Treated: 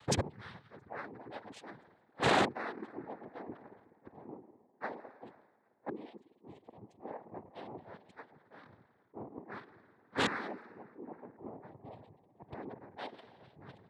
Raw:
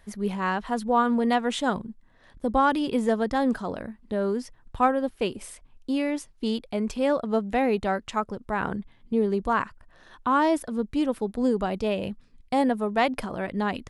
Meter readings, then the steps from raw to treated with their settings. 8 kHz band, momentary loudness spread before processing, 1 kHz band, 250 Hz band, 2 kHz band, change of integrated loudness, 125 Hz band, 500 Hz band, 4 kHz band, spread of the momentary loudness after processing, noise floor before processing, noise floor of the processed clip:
−4.5 dB, 10 LU, −14.5 dB, −19.0 dB, −9.0 dB, −13.5 dB, −8.0 dB, −15.5 dB, −6.0 dB, 23 LU, −57 dBFS, −71 dBFS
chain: high-shelf EQ 5,400 Hz −6 dB
spring reverb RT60 3.7 s, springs 53 ms, chirp 75 ms, DRR 2.5 dB
reverb reduction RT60 0.52 s
on a send: feedback echo with a low-pass in the loop 822 ms, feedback 68%, low-pass 2,000 Hz, level −20 dB
on the sum: gate with flip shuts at −26 dBFS, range −31 dB
high-pass filter 160 Hz 12 dB per octave
gate on every frequency bin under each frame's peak −20 dB strong
wave folding −39 dBFS
cochlear-implant simulation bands 6
multiband upward and downward expander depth 100%
level +9 dB

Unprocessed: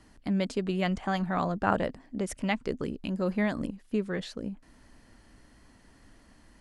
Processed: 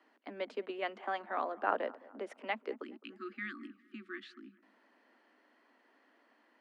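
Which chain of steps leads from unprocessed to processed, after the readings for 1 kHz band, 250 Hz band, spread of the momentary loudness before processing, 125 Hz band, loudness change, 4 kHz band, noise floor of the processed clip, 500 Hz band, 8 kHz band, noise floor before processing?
−5.0 dB, −17.5 dB, 8 LU, below −25 dB, −9.0 dB, −9.5 dB, −70 dBFS, −7.5 dB, below −20 dB, −59 dBFS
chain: time-frequency box erased 0:02.83–0:04.58, 370–1,100 Hz
Butterworth high-pass 210 Hz 96 dB per octave
three-way crossover with the lows and the highs turned down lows −24 dB, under 310 Hz, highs −24 dB, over 3,400 Hz
on a send: delay with a low-pass on its return 211 ms, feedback 41%, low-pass 1,900 Hz, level −21 dB
on the sum: level −4.5 dB

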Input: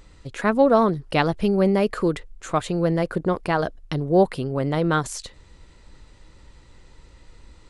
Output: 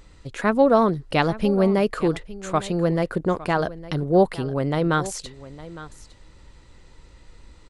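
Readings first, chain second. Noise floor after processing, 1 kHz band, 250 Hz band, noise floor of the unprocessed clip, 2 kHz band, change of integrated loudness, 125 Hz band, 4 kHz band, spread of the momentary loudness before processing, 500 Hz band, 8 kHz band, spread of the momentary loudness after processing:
−50 dBFS, 0.0 dB, 0.0 dB, −51 dBFS, 0.0 dB, 0.0 dB, 0.0 dB, 0.0 dB, 9 LU, 0.0 dB, 0.0 dB, 19 LU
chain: single-tap delay 859 ms −17 dB

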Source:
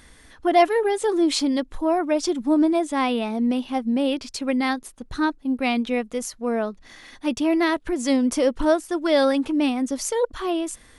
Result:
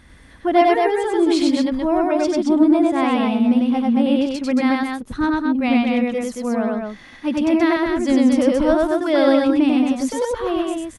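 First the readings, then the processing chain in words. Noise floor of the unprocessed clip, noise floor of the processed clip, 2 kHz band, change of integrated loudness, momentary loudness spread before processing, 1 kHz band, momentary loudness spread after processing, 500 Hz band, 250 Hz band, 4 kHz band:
−51 dBFS, −44 dBFS, +3.0 dB, +4.5 dB, 8 LU, +3.5 dB, 8 LU, +3.5 dB, +6.0 dB, 0.0 dB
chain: high-pass filter 58 Hz 6 dB per octave
bass and treble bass +7 dB, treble −8 dB
notch filter 450 Hz, Q 12
on a send: loudspeakers that aren't time-aligned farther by 33 metres −1 dB, 77 metres −4 dB

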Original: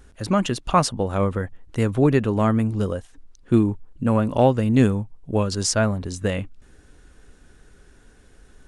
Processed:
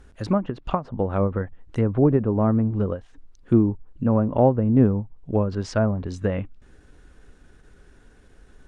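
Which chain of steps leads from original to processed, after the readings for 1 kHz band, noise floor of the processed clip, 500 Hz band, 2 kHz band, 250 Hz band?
−4.5 dB, −53 dBFS, −0.5 dB, −8.0 dB, −0.5 dB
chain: high-shelf EQ 4,500 Hz −7.5 dB
treble cut that deepens with the level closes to 950 Hz, closed at −17 dBFS
every ending faded ahead of time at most 240 dB per second

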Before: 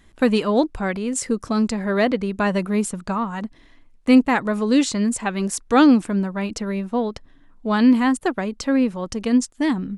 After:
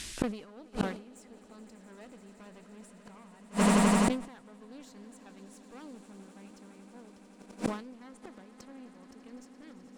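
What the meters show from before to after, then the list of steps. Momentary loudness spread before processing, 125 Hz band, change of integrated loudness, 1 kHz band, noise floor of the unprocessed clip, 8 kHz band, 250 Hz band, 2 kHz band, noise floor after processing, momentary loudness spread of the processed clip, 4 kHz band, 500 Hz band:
10 LU, can't be measured, −9.0 dB, −12.5 dB, −52 dBFS, −11.0 dB, −15.5 dB, −14.0 dB, −56 dBFS, 25 LU, −12.5 dB, −15.5 dB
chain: noise in a band 1,700–9,700 Hz −49 dBFS
in parallel at −1.5 dB: brickwall limiter −12 dBFS, peak gain reduction 8 dB
on the sum: asymmetric clip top −20.5 dBFS, bottom −4.5 dBFS
echo that builds up and dies away 85 ms, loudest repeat 8, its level −14 dB
reversed playback
upward compression, threshold −18 dBFS
reversed playback
gate with flip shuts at −12 dBFS, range −33 dB
level that may fall only so fast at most 110 dB per second
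level −1.5 dB

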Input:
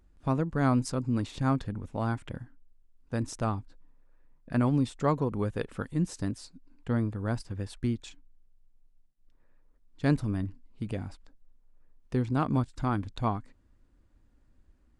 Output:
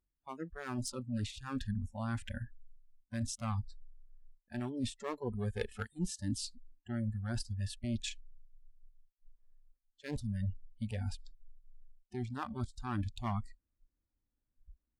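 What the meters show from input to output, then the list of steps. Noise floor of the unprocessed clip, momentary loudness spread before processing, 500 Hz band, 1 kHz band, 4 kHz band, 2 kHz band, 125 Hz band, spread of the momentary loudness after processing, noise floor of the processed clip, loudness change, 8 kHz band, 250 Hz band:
−64 dBFS, 12 LU, −10.5 dB, −10.5 dB, +1.0 dB, −6.5 dB, −8.0 dB, 8 LU, below −85 dBFS, −8.5 dB, +1.0 dB, −9.5 dB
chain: dynamic equaliser 720 Hz, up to −5 dB, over −42 dBFS, Q 1.2
asymmetric clip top −32 dBFS, bottom −18 dBFS
reversed playback
downward compressor 5 to 1, threshold −39 dBFS, peak gain reduction 15 dB
reversed playback
noise reduction from a noise print of the clip's start 29 dB
level +7 dB

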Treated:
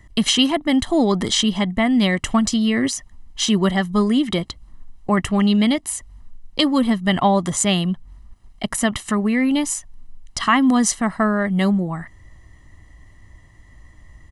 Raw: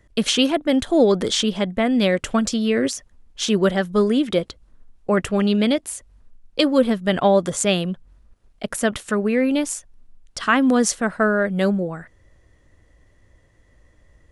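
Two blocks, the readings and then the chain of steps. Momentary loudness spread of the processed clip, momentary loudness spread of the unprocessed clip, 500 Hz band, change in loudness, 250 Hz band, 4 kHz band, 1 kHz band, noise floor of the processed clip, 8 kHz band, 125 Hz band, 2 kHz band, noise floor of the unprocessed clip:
11 LU, 13 LU, −5.0 dB, +1.0 dB, +2.5 dB, +3.0 dB, +3.0 dB, −49 dBFS, +3.5 dB, +3.5 dB, +0.5 dB, −58 dBFS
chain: comb filter 1 ms, depth 70%
in parallel at +1 dB: downward compressor, threshold −29 dBFS, peak gain reduction 16.5 dB
on the sum: level −1.5 dB

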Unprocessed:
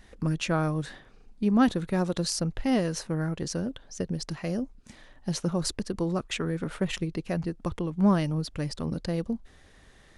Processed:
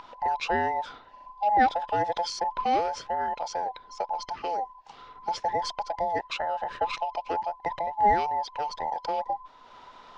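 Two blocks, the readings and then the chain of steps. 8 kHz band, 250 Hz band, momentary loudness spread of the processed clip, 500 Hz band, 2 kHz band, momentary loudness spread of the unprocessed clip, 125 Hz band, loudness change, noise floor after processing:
−9.0 dB, −14.5 dB, 12 LU, +0.5 dB, +3.0 dB, 10 LU, −19.0 dB, +0.5 dB, −52 dBFS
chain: frequency inversion band by band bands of 1,000 Hz
low-pass filter 5,200 Hz 24 dB per octave
upward compression, threshold −41 dBFS

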